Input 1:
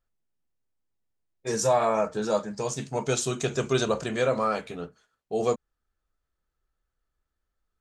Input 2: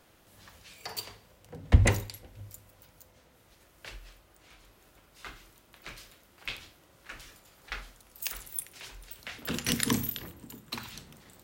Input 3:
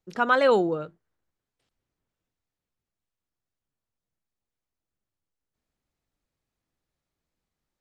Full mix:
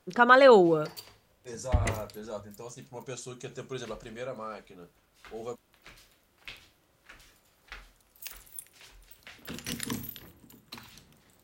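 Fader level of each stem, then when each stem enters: -13.5 dB, -7.0 dB, +3.0 dB; 0.00 s, 0.00 s, 0.00 s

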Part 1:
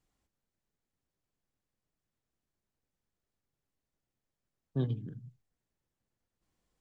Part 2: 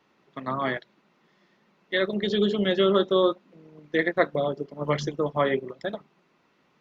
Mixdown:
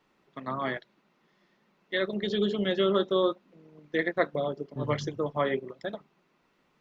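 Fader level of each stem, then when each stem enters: -4.5 dB, -4.0 dB; 0.00 s, 0.00 s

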